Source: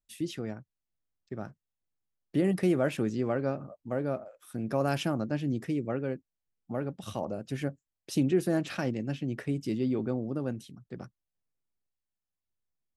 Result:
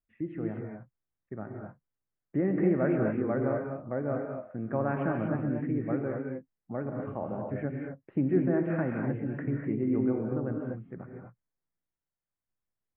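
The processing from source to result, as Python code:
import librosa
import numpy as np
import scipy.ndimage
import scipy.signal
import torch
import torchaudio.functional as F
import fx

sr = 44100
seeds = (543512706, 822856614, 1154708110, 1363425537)

y = scipy.signal.sosfilt(scipy.signal.butter(8, 2100.0, 'lowpass', fs=sr, output='sos'), x)
y = fx.rev_gated(y, sr, seeds[0], gate_ms=270, shape='rising', drr_db=1.0)
y = y * librosa.db_to_amplitude(-1.5)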